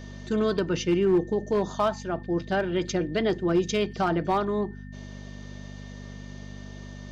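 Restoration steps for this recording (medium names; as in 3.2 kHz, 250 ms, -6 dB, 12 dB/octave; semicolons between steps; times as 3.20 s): clip repair -16 dBFS; de-hum 49.5 Hz, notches 5; band-stop 1.8 kHz, Q 30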